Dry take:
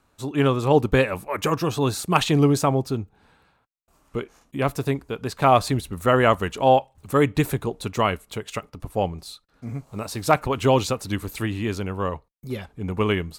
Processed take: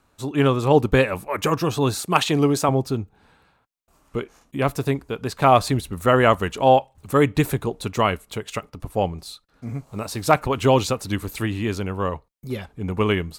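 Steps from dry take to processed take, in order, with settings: 1.99–2.69 HPF 220 Hz 6 dB/oct; gain +1.5 dB

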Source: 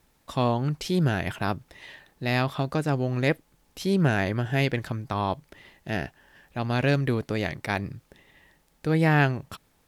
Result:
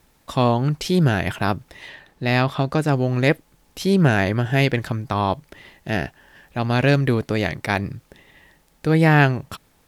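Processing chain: 1.88–2.77 high shelf 6200 Hz -> 11000 Hz -8 dB; gain +6 dB

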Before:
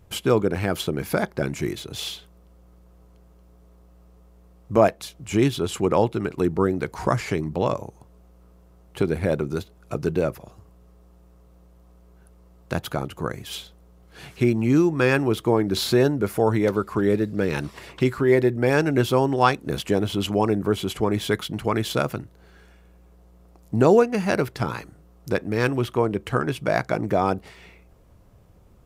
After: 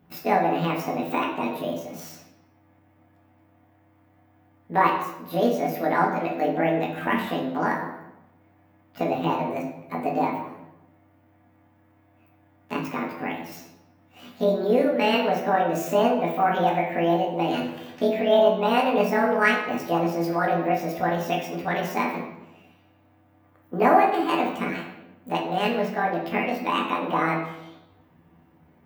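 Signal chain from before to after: delay-line pitch shifter +9 st; HPF 78 Hz; band shelf 6600 Hz -10.5 dB; notches 60/120/180 Hz; reverb RT60 0.95 s, pre-delay 4 ms, DRR -1 dB; gain -4 dB

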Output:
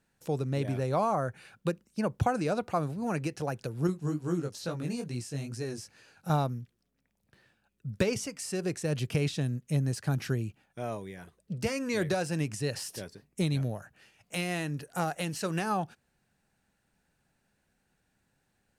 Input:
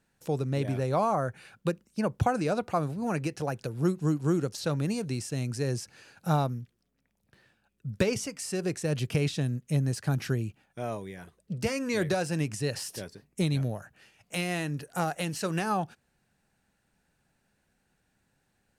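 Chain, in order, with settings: 3.87–6.3 chorus 2.3 Hz, delay 16.5 ms, depth 5 ms; gain -1.5 dB

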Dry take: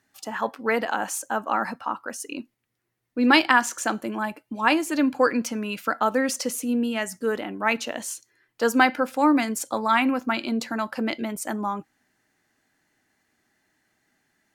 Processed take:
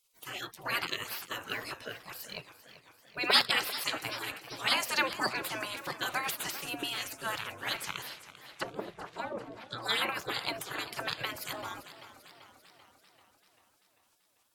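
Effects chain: spectral gate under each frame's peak -20 dB weak; 8.06–9.82 treble ducked by the level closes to 510 Hz, closed at -35.5 dBFS; warbling echo 0.391 s, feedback 61%, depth 99 cents, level -14.5 dB; gain +7 dB

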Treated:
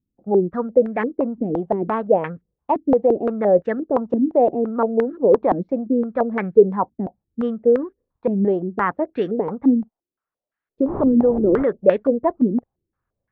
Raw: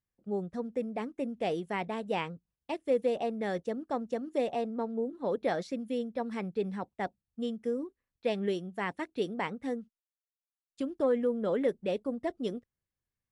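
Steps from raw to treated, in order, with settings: 10.87–11.62 wind noise 370 Hz -37 dBFS; maximiser +21.5 dB; stepped low-pass 5.8 Hz 270–1700 Hz; gain -11 dB

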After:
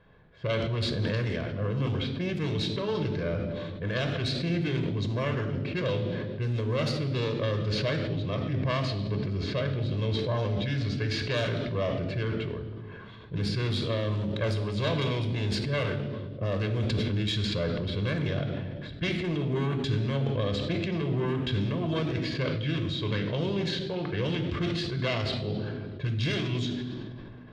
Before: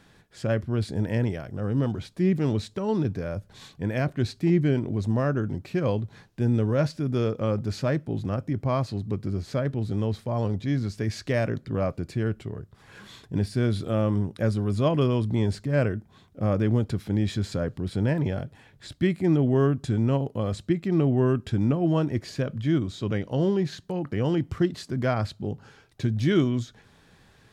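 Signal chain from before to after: self-modulated delay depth 0.28 ms; low-pass opened by the level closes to 1000 Hz, open at -18.5 dBFS; bell 3300 Hz +13 dB 1.7 oct; compressor, threshold -24 dBFS, peak gain reduction 9 dB; reverb RT60 1.5 s, pre-delay 3 ms, DRR 6 dB; sustainer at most 22 dB/s; gain -4.5 dB

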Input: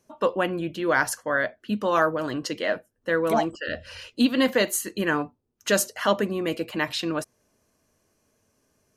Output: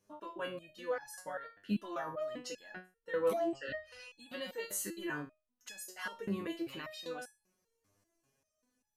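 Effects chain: limiter -18.5 dBFS, peak gain reduction 11.5 dB; stepped resonator 5.1 Hz 100–840 Hz; gain +2 dB

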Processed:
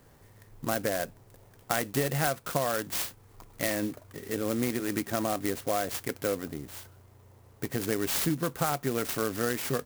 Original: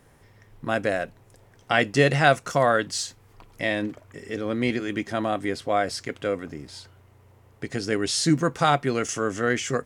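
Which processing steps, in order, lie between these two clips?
compressor 12:1, threshold -23 dBFS, peak gain reduction 11.5 dB; clock jitter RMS 0.076 ms; gain -1 dB

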